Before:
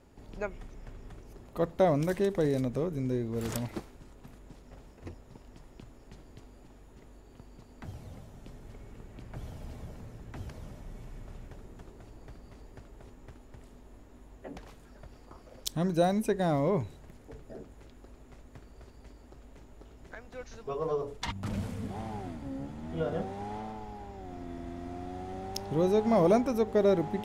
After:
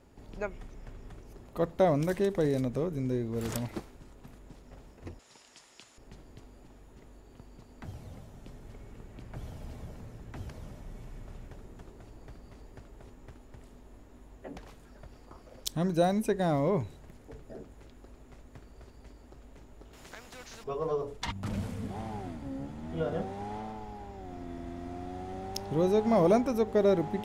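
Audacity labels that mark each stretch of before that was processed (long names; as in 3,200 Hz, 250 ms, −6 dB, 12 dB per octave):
5.190000	5.980000	meter weighting curve ITU-R 468
19.930000	20.640000	every bin compressed towards the loudest bin 2 to 1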